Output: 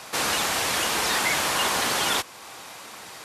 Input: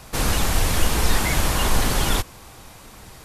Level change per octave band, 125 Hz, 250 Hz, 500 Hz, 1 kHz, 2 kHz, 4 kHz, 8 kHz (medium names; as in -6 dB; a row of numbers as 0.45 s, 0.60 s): -17.5 dB, -7.5 dB, -2.0 dB, +1.0 dB, +2.0 dB, +2.0 dB, 0.0 dB